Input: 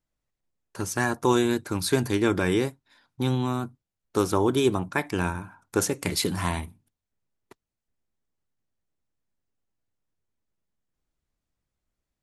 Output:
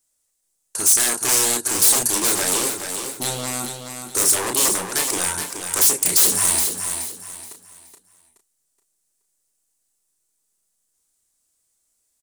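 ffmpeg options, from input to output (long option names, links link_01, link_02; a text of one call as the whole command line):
ffmpeg -i in.wav -filter_complex "[0:a]equalizer=frequency=8800:width_type=o:width=0.91:gain=12.5,asplit=2[link_01][link_02];[link_02]adelay=33,volume=-6dB[link_03];[link_01][link_03]amix=inputs=2:normalize=0,aeval=exprs='0.0841*(abs(mod(val(0)/0.0841+3,4)-2)-1)':channel_layout=same,bass=frequency=250:gain=-11,treble=frequency=4000:gain=12,asplit=2[link_04][link_05];[link_05]aecho=0:1:424|848|1272|1696:0.447|0.138|0.0429|0.0133[link_06];[link_04][link_06]amix=inputs=2:normalize=0,volume=2.5dB" out.wav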